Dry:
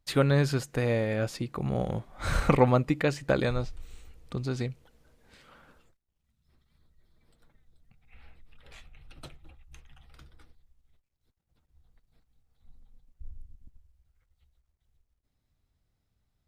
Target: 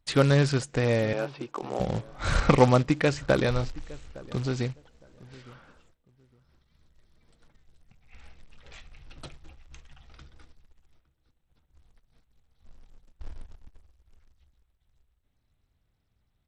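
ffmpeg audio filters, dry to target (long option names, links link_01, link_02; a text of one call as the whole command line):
ffmpeg -i in.wav -filter_complex "[0:a]asettb=1/sr,asplit=3[link_01][link_02][link_03];[link_01]atrim=end=1.134[link_04];[link_02]atrim=start=1.13:end=1.8,asetpts=PTS-STARTPTS,afade=type=in:duration=0.004:curve=qsin,afade=type=out:start_time=0.666:duration=0.004:curve=qsin,highpass=frequency=300:width=0.5412,highpass=frequency=300:width=1.3066,equalizer=frequency=510:width_type=q:width=4:gain=-3,equalizer=frequency=930:width_type=q:width=4:gain=6,equalizer=frequency=1900:width_type=q:width=4:gain=-10,lowpass=frequency=3100:width=0.5412,lowpass=frequency=3100:width=1.3066[link_05];[link_03]atrim=start=1.796[link_06];[link_04][link_05]acrossfade=duration=0.004:curve1=hsin:curve2=qsin[link_07];[link_07][link_06]acrossfade=duration=0.004:curve1=qsin:curve2=hsin,asplit=2[link_08][link_09];[link_09]adelay=861,lowpass=frequency=1200:poles=1,volume=-20dB,asplit=2[link_10][link_11];[link_11]adelay=861,lowpass=frequency=1200:poles=1,volume=0.22[link_12];[link_10][link_12]amix=inputs=2:normalize=0[link_13];[link_08][link_13]amix=inputs=2:normalize=0,acrusher=bits=4:mode=log:mix=0:aa=0.000001,volume=2.5dB" -ar 32000 -c:a sbc -b:a 64k out.sbc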